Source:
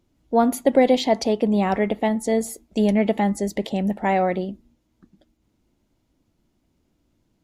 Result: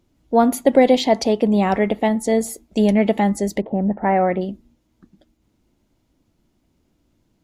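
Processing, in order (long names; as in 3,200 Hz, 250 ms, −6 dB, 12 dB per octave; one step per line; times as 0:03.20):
0:03.60–0:04.40: low-pass filter 1,100 Hz → 2,700 Hz 24 dB per octave
level +3 dB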